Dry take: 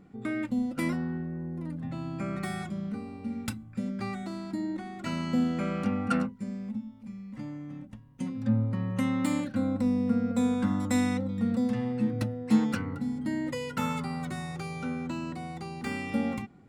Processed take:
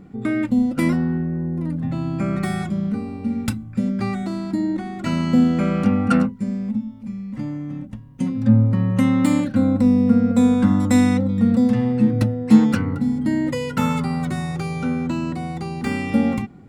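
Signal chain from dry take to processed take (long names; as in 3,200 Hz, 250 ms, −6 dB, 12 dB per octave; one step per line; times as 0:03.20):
low-shelf EQ 410 Hz +5.5 dB
level +7 dB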